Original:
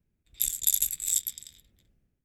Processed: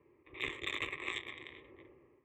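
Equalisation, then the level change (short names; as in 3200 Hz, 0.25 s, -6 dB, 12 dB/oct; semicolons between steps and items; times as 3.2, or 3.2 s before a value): speaker cabinet 210–2200 Hz, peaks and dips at 360 Hz +8 dB, 630 Hz +10 dB, 1100 Hz +10 dB, 2000 Hz +3 dB; fixed phaser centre 1000 Hz, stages 8; +18.0 dB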